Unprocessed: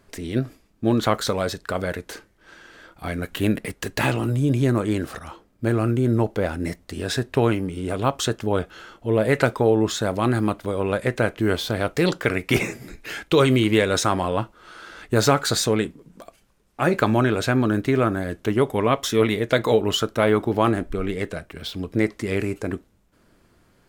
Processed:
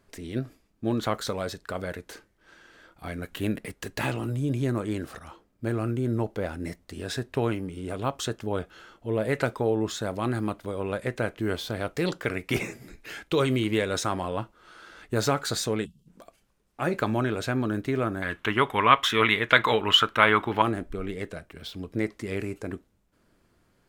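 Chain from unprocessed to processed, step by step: 15.85–16.07 s: time-frequency box 230–2600 Hz -23 dB; 18.22–20.62 s: high-order bell 1.8 kHz +14 dB 2.3 oct; trim -7 dB

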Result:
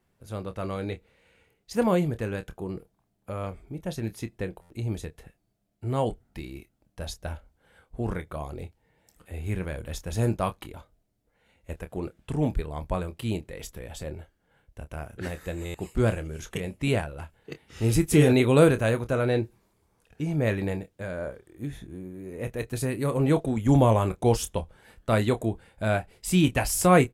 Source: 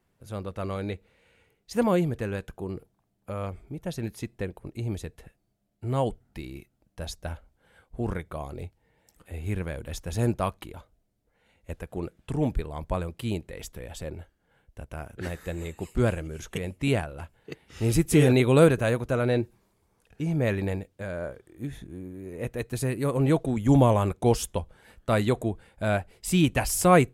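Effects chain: doubling 27 ms -11 dB; buffer glitch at 4.61/15.65 s, samples 512, times 7

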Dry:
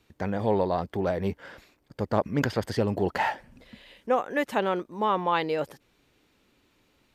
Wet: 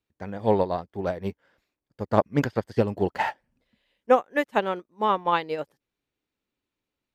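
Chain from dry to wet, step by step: upward expansion 2.5:1, over -38 dBFS; trim +7.5 dB

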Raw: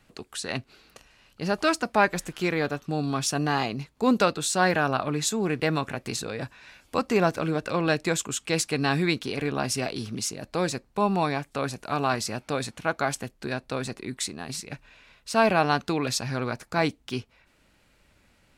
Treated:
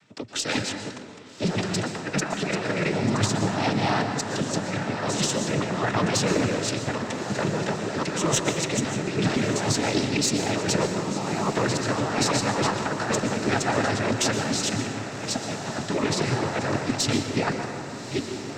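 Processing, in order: chunks repeated in reverse 535 ms, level -4 dB; compressor with a negative ratio -28 dBFS, ratio -0.5; waveshaping leveller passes 1; noise-vocoded speech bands 12; Chebyshev shaper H 2 -16 dB, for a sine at -9 dBFS; echo that smears into a reverb 1218 ms, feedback 63%, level -12 dB; plate-style reverb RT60 1.7 s, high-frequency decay 0.45×, pre-delay 105 ms, DRR 6 dB

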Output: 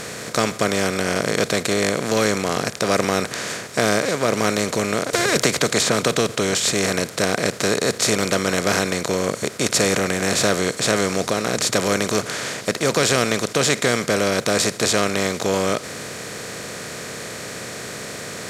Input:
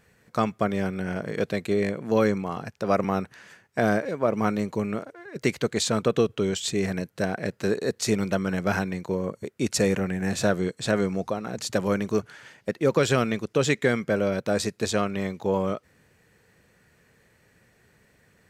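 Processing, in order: spectral levelling over time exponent 0.4; treble shelf 2.7 kHz +9 dB; 5.13–6.12 s: three bands compressed up and down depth 100%; trim -2.5 dB

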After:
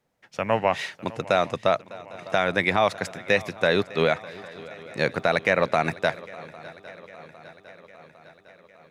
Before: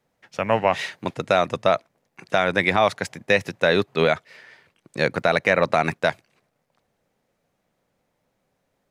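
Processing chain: shuffle delay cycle 805 ms, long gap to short 3:1, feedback 60%, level -20 dB; trim -2.5 dB

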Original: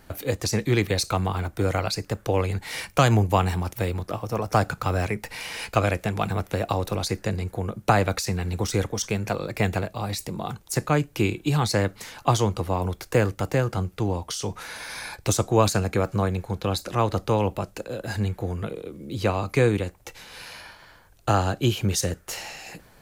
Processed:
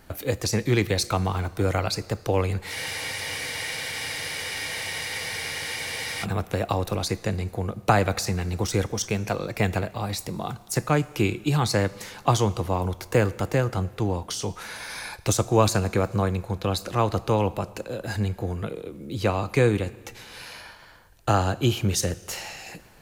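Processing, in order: Schroeder reverb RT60 1.7 s, combs from 25 ms, DRR 18.5 dB; spectral freeze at 2.76 s, 3.48 s

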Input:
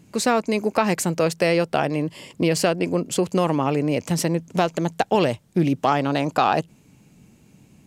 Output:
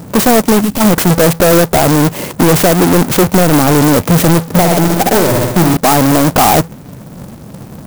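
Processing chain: square wave that keeps the level; peaking EQ 5.5 kHz -6.5 dB 1.9 oct; saturation -18.5 dBFS, distortion -9 dB; 0.61–0.81 s: time-frequency box 290–2600 Hz -13 dB; 4.44–5.77 s: flutter echo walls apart 10.9 m, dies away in 0.77 s; loudness maximiser +21.5 dB; sampling jitter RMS 0.078 ms; trim -4 dB

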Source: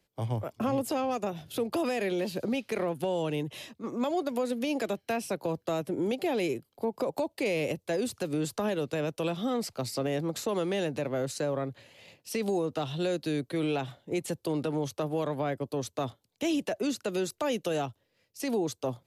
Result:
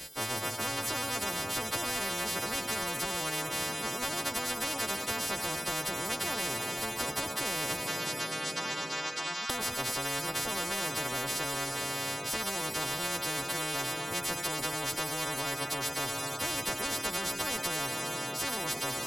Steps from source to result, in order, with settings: partials quantised in pitch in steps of 2 st; 7.84–9.50 s: elliptic band-pass 1.2–5.4 kHz, stop band 40 dB; plate-style reverb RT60 2.8 s, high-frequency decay 0.75×, DRR 13.5 dB; spectrum-flattening compressor 10:1

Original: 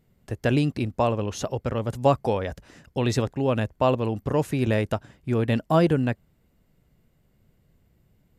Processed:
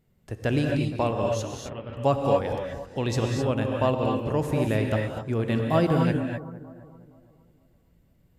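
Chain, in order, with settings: 1.43–1.97 s: four-pole ladder low-pass 3.6 kHz, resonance 45%; bucket-brigade echo 466 ms, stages 4096, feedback 30%, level -17 dB; gated-style reverb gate 280 ms rising, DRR 1 dB; trim -3.5 dB

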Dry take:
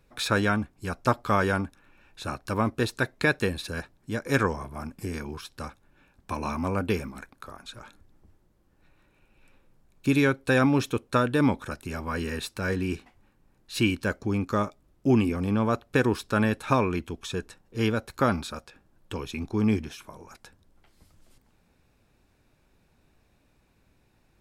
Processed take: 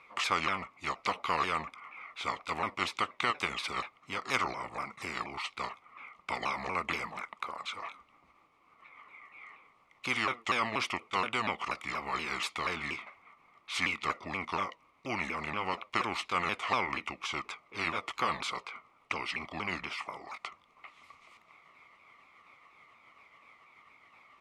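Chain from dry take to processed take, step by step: sawtooth pitch modulation -5.5 st, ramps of 239 ms; two resonant band-passes 1.6 kHz, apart 0.88 oct; spectrum-flattening compressor 2:1; trim +6 dB

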